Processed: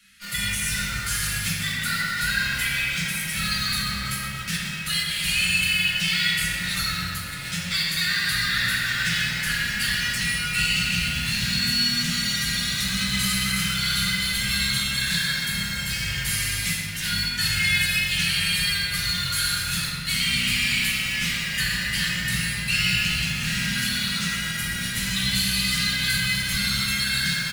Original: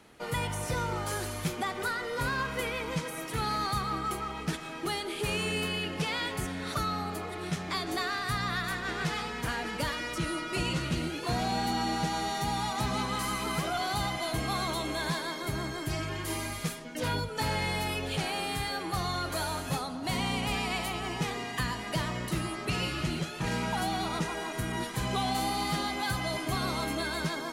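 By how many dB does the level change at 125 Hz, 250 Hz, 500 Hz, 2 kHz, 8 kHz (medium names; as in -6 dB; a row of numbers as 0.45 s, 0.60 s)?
+4.5 dB, +2.0 dB, -13.5 dB, +12.0 dB, +13.0 dB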